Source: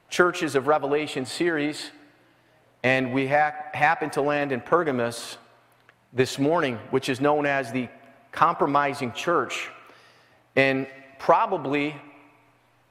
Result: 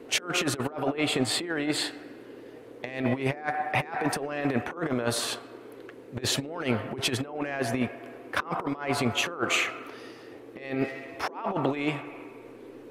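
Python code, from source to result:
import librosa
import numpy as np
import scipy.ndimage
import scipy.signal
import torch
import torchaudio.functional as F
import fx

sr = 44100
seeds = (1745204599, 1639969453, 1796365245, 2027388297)

y = fx.over_compress(x, sr, threshold_db=-28.0, ratio=-0.5)
y = fx.dmg_noise_band(y, sr, seeds[0], low_hz=250.0, high_hz=500.0, level_db=-46.0)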